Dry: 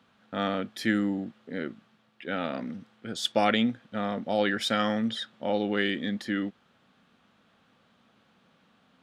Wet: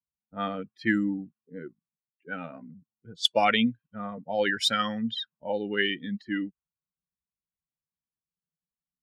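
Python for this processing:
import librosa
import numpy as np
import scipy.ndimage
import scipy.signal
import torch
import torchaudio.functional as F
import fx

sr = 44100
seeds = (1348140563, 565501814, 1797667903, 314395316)

y = fx.bin_expand(x, sr, power=2.0)
y = fx.tilt_shelf(y, sr, db=-3.0, hz=1300.0)
y = fx.env_lowpass(y, sr, base_hz=720.0, full_db=-29.0)
y = y * 10.0 ** (5.5 / 20.0)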